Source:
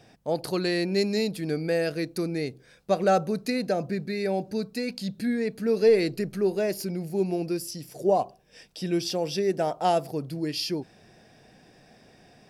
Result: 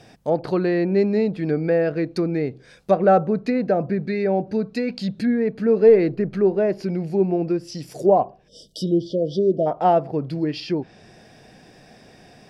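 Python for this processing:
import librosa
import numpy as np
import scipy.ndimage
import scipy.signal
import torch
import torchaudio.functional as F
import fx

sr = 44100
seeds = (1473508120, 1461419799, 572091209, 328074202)

y = fx.env_lowpass_down(x, sr, base_hz=1500.0, full_db=-24.5)
y = fx.spec_erase(y, sr, start_s=8.48, length_s=1.18, low_hz=670.0, high_hz=2900.0)
y = y * 10.0 ** (6.5 / 20.0)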